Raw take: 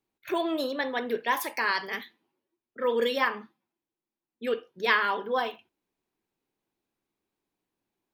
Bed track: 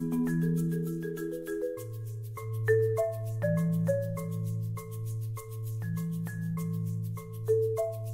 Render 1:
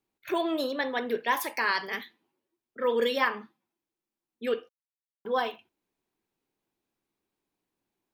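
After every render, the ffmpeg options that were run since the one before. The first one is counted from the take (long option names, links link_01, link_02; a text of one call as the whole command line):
ffmpeg -i in.wav -filter_complex "[0:a]asplit=3[link_01][link_02][link_03];[link_01]atrim=end=4.69,asetpts=PTS-STARTPTS,afade=type=out:start_time=4.686:duration=0.004:curve=hsin[link_04];[link_02]atrim=start=4.69:end=5.25,asetpts=PTS-STARTPTS,volume=0[link_05];[link_03]atrim=start=5.25,asetpts=PTS-STARTPTS,afade=type=in:duration=0.004:curve=hsin[link_06];[link_04][link_05][link_06]concat=n=3:v=0:a=1" out.wav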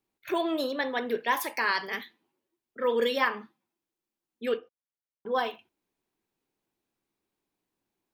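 ffmpeg -i in.wav -filter_complex "[0:a]asettb=1/sr,asplit=3[link_01][link_02][link_03];[link_01]atrim=end=4.574[link_04];[link_02]atrim=start=4.57:end=5.35,asetpts=PTS-STARTPTS,afade=type=in:duration=0.004:curve=qsin,afade=type=out:start_time=0.776:duration=0.004:curve=qsin,lowpass=frequency=1200:poles=1[link_05];[link_03]atrim=start=5.346[link_06];[link_04][link_05]acrossfade=duration=0.004:curve1=hsin:curve2=qsin[link_07];[link_07][link_06]acrossfade=duration=0.004:curve1=qsin:curve2=hsin" out.wav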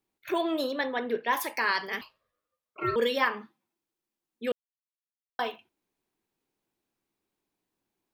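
ffmpeg -i in.wav -filter_complex "[0:a]asettb=1/sr,asplit=3[link_01][link_02][link_03];[link_01]atrim=end=0.864[link_04];[link_02]atrim=start=0.86:end=1.33,asetpts=PTS-STARTPTS,afade=type=in:duration=0.004:curve=qsin,afade=type=out:start_time=0.466:duration=0.004:curve=qsin,lowpass=frequency=3100:poles=1[link_05];[link_03]atrim=start=1.326[link_06];[link_04][link_05]acrossfade=duration=0.004:curve1=hsin:curve2=qsin[link_07];[link_07][link_06]acrossfade=duration=0.004:curve1=qsin:curve2=hsin,asettb=1/sr,asplit=3[link_08][link_09][link_10];[link_08]atrim=end=2.014[link_11];[link_09]atrim=start=2.01:end=2.96,asetpts=PTS-STARTPTS,afade=type=in:duration=0.004:curve=qsin,afade=type=out:start_time=0.946:duration=0.004:curve=qsin,aeval=exprs='val(0)*sin(2*PI*860*n/s)':channel_layout=same[link_12];[link_10]atrim=start=2.956[link_13];[link_11][link_12]acrossfade=duration=0.004:curve1=hsin:curve2=qsin[link_14];[link_14][link_13]acrossfade=duration=0.004:curve1=qsin:curve2=hsin,asplit=3[link_15][link_16][link_17];[link_15]atrim=end=4.52,asetpts=PTS-STARTPTS,afade=type=out:start_time=4.516:duration=0.004:curve=hsin[link_18];[link_16]atrim=start=4.52:end=5.39,asetpts=PTS-STARTPTS,volume=0[link_19];[link_17]atrim=start=5.39,asetpts=PTS-STARTPTS,afade=type=in:duration=0.004:curve=hsin[link_20];[link_18][link_19][link_20]concat=n=3:v=0:a=1" out.wav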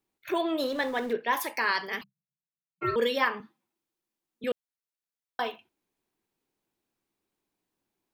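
ffmpeg -i in.wav -filter_complex "[0:a]asettb=1/sr,asplit=3[link_01][link_02][link_03];[link_01]atrim=end=0.614[link_04];[link_02]atrim=start=0.61:end=1.13,asetpts=PTS-STARTPTS,afade=type=in:duration=0.004:curve=qsin,afade=type=out:start_time=0.516:duration=0.004:curve=qsin,aeval=exprs='val(0)+0.5*0.00841*sgn(val(0))':channel_layout=same[link_05];[link_03]atrim=start=1.126[link_06];[link_04][link_05]acrossfade=duration=0.004:curve1=hsin:curve2=qsin[link_07];[link_07][link_06]acrossfade=duration=0.004:curve1=qsin:curve2=hsin,asplit=3[link_08][link_09][link_10];[link_08]afade=type=out:start_time=2.02:duration=0.02[link_11];[link_09]asuperpass=centerf=160:order=20:qfactor=2.3,afade=type=in:start_time=2.02:duration=0.02,afade=type=out:start_time=2.81:duration=0.02[link_12];[link_10]afade=type=in:start_time=2.81:duration=0.02[link_13];[link_11][link_12][link_13]amix=inputs=3:normalize=0,asettb=1/sr,asplit=3[link_14][link_15][link_16];[link_14]atrim=end=3.404[link_17];[link_15]atrim=start=3.4:end=4.44,asetpts=PTS-STARTPTS,afade=type=in:duration=0.004:curve=qsin,afade=type=out:start_time=1.036:duration=0.004:curve=qsin,acrossover=split=340|3000[link_18][link_19][link_20];[link_19]acompressor=threshold=-53dB:ratio=6:attack=3.2:release=140:knee=2.83:detection=peak[link_21];[link_18][link_21][link_20]amix=inputs=3:normalize=0[link_22];[link_16]atrim=start=4.436[link_23];[link_17][link_22]acrossfade=duration=0.004:curve1=hsin:curve2=qsin[link_24];[link_24][link_23]acrossfade=duration=0.004:curve1=qsin:curve2=hsin" out.wav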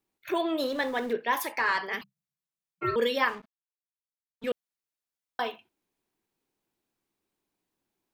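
ffmpeg -i in.wav -filter_complex "[0:a]asettb=1/sr,asplit=3[link_01][link_02][link_03];[link_01]atrim=end=1.524[link_04];[link_02]atrim=start=1.52:end=1.94,asetpts=PTS-STARTPTS,afade=type=in:duration=0.004:curve=qsin,afade=type=out:start_time=0.416:duration=0.004:curve=qsin,asplit=2[link_05][link_06];[link_06]highpass=frequency=720:poles=1,volume=11dB,asoftclip=type=tanh:threshold=-14dB[link_07];[link_05][link_07]amix=inputs=2:normalize=0,lowpass=frequency=1500:poles=1,volume=-6dB[link_08];[link_03]atrim=start=1.936[link_09];[link_04][link_08]acrossfade=duration=0.004:curve1=hsin:curve2=qsin[link_10];[link_10][link_09]acrossfade=duration=0.004:curve1=qsin:curve2=hsin,asettb=1/sr,asplit=3[link_11][link_12][link_13];[link_11]atrim=end=3.284[link_14];[link_12]atrim=start=3.28:end=4.5,asetpts=PTS-STARTPTS,afade=type=in:duration=0.004:curve=qsin,afade=type=out:start_time=1.216:duration=0.004:curve=qsin,aeval=exprs='sgn(val(0))*max(abs(val(0))-0.00376,0)':channel_layout=same[link_15];[link_13]atrim=start=4.496[link_16];[link_14][link_15]acrossfade=duration=0.004:curve1=hsin:curve2=qsin[link_17];[link_17][link_16]acrossfade=duration=0.004:curve1=qsin:curve2=hsin" out.wav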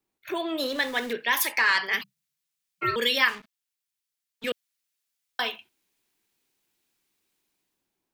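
ffmpeg -i in.wav -filter_complex "[0:a]acrossover=split=250|1700[link_01][link_02][link_03];[link_02]alimiter=limit=-23.5dB:level=0:latency=1:release=323[link_04];[link_03]dynaudnorm=framelen=200:gausssize=7:maxgain=10.5dB[link_05];[link_01][link_04][link_05]amix=inputs=3:normalize=0" out.wav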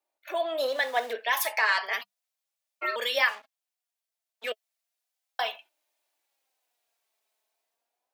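ffmpeg -i in.wav -af "highpass=frequency=650:width_type=q:width=4.2,flanger=delay=3.3:depth=1.3:regen=45:speed=0.34:shape=sinusoidal" out.wav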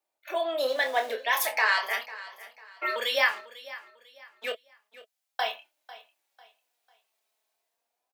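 ffmpeg -i in.wav -filter_complex "[0:a]asplit=2[link_01][link_02];[link_02]adelay=27,volume=-7dB[link_03];[link_01][link_03]amix=inputs=2:normalize=0,aecho=1:1:497|994|1491:0.133|0.044|0.0145" out.wav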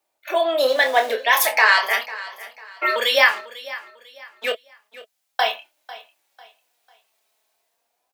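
ffmpeg -i in.wav -af "volume=9dB,alimiter=limit=-1dB:level=0:latency=1" out.wav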